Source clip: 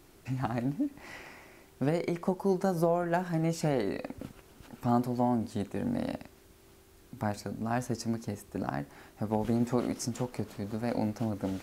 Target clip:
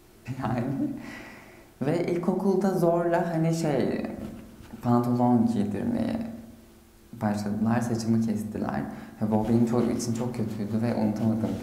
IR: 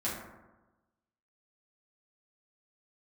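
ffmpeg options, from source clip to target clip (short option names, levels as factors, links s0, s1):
-filter_complex "[0:a]asplit=2[s0][s1];[1:a]atrim=start_sample=2205,lowshelf=f=370:g=3.5[s2];[s1][s2]afir=irnorm=-1:irlink=0,volume=0.398[s3];[s0][s3]amix=inputs=2:normalize=0"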